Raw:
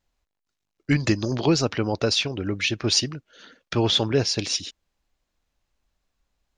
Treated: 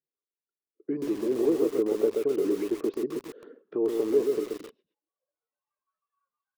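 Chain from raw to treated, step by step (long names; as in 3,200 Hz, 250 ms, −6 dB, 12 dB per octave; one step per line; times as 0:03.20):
noise reduction from a noise print of the clip's start 22 dB
in parallel at +2 dB: downward compressor 12 to 1, threshold −32 dBFS, peak gain reduction 17 dB
on the sum: brickwall limiter −17 dBFS, peak gain reduction 10 dB
band-pass filter 210–3,100 Hz
hollow resonant body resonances 440/1,100 Hz, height 11 dB, ringing for 30 ms
echo with shifted repeats 118 ms, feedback 37%, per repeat −57 Hz, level −23 dB
band-pass filter sweep 350 Hz → 1,200 Hz, 0:04.32–0:06.08
feedback echo at a low word length 130 ms, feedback 35%, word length 7 bits, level −3.5 dB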